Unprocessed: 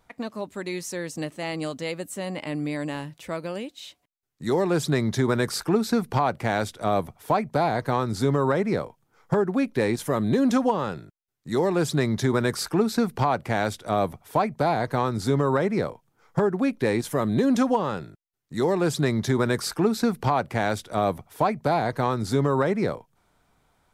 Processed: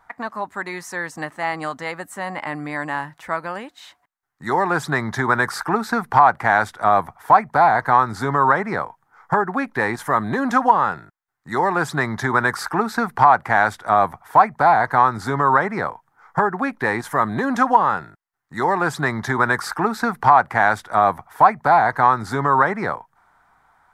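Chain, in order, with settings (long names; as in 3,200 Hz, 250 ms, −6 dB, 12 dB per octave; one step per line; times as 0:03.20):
flat-topped bell 1,200 Hz +15 dB
level −2 dB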